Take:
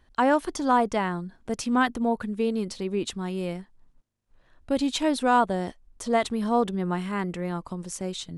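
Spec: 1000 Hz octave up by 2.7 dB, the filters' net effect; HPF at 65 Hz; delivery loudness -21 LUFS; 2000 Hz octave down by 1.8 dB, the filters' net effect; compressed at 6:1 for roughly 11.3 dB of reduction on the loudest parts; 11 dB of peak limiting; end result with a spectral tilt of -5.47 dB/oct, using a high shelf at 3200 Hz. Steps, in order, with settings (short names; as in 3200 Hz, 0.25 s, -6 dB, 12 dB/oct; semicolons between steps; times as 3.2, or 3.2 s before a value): HPF 65 Hz; bell 1000 Hz +4.5 dB; bell 2000 Hz -3.5 dB; high shelf 3200 Hz -4.5 dB; compressor 6:1, threshold -26 dBFS; gain +14 dB; limiter -11.5 dBFS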